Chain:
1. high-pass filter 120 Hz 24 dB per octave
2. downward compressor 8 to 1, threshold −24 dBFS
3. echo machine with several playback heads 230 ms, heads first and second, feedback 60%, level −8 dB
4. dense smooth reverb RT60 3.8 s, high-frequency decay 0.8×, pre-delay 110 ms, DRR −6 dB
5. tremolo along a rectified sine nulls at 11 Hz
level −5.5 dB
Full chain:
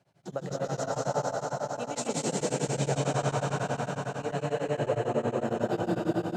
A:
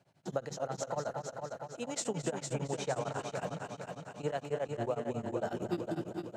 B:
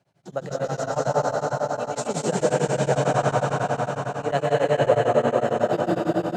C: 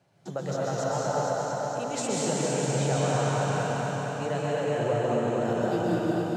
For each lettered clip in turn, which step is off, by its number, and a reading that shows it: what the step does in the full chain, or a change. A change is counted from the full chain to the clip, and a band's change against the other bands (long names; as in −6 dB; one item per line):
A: 4, change in momentary loudness spread +2 LU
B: 2, average gain reduction 4.5 dB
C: 5, change in integrated loudness +3.0 LU